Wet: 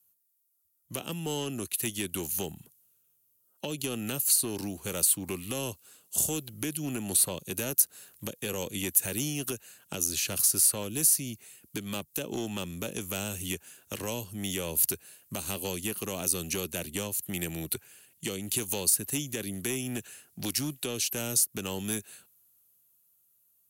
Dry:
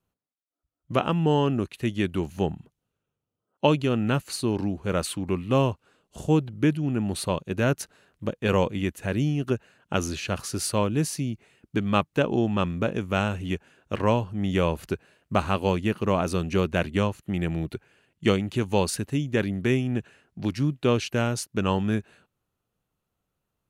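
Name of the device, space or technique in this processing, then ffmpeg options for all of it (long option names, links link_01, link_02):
FM broadcast chain: -filter_complex "[0:a]highpass=frequency=66:width=0.5412,highpass=frequency=66:width=1.3066,dynaudnorm=framelen=300:gausssize=11:maxgain=11.5dB,acrossover=split=270|580|2400[link_01][link_02][link_03][link_04];[link_01]acompressor=threshold=-28dB:ratio=4[link_05];[link_02]acompressor=threshold=-20dB:ratio=4[link_06];[link_03]acompressor=threshold=-37dB:ratio=4[link_07];[link_04]acompressor=threshold=-35dB:ratio=4[link_08];[link_05][link_06][link_07][link_08]amix=inputs=4:normalize=0,aemphasis=mode=production:type=75fm,alimiter=limit=-15dB:level=0:latency=1:release=165,asoftclip=type=hard:threshold=-18.5dB,lowpass=frequency=15000:width=0.5412,lowpass=frequency=15000:width=1.3066,aemphasis=mode=production:type=75fm,volume=-8dB"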